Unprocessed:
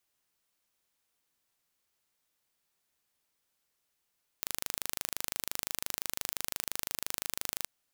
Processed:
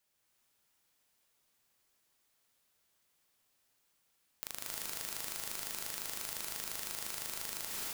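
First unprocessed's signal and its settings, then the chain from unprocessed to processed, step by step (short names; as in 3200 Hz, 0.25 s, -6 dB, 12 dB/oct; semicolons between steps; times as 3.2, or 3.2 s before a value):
pulse train 25.8/s, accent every 0, -6 dBFS 3.23 s
non-linear reverb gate 0.32 s rising, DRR -2 dB; compressor 6:1, threshold -35 dBFS; polarity switched at an audio rate 230 Hz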